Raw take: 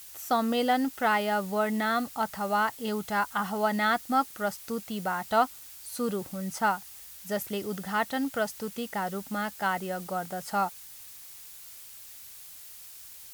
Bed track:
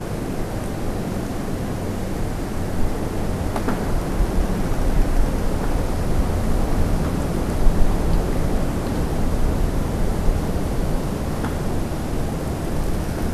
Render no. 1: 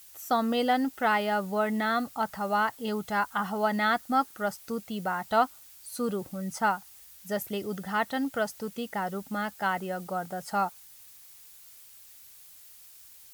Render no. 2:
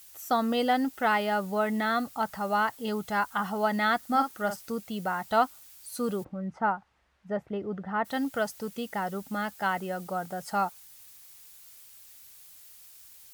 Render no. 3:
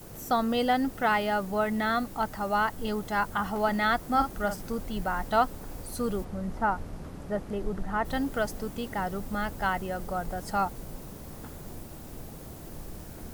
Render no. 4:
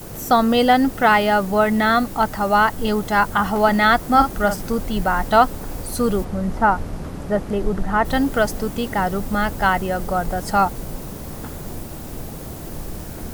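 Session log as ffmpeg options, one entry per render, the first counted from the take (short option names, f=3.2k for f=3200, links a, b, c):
-af "afftdn=nr=6:nf=-47"
-filter_complex "[0:a]asettb=1/sr,asplit=3[a][b][c];[a]atrim=end=3.984[d];[b]atrim=start=3.98:end=4.72,asetpts=PTS-STARTPTS,afade=t=in:d=0.004:c=qsin,afade=t=out:st=0.736:d=0.004:c=qsin,asplit=2[e][f];[f]adelay=48,volume=-8dB[g];[e][g]amix=inputs=2:normalize=0,atrim=end_sample=32634[h];[c]atrim=start=4.716[i];[d][h]acrossfade=d=0.004:c1=hsin:c2=qsin[j];[j][i]acrossfade=d=0.004:c1=qsin:c2=hsin,asplit=3[k][l][m];[k]afade=t=out:st=6.23:d=0.02[n];[l]lowpass=1.5k,afade=t=in:st=6.23:d=0.02,afade=t=out:st=8.04:d=0.02[o];[m]afade=t=in:st=8.04:d=0.02[p];[n][o][p]amix=inputs=3:normalize=0"
-filter_complex "[1:a]volume=-19.5dB[a];[0:a][a]amix=inputs=2:normalize=0"
-af "volume=10.5dB,alimiter=limit=-2dB:level=0:latency=1"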